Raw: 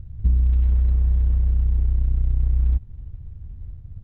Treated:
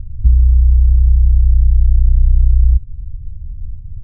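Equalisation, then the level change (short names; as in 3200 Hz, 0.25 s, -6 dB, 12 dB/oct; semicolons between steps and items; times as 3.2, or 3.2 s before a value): tilt -4 dB/oct; bell 150 Hz +3 dB 0.31 oct; -8.0 dB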